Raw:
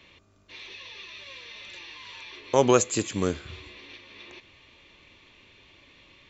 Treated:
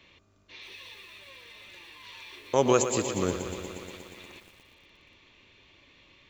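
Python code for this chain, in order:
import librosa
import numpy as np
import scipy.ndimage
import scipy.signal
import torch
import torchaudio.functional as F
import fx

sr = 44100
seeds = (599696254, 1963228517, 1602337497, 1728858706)

y = fx.high_shelf(x, sr, hz=3000.0, db=-6.5, at=(0.94, 2.04))
y = fx.echo_crushed(y, sr, ms=119, feedback_pct=80, bits=8, wet_db=-10)
y = y * librosa.db_to_amplitude(-3.0)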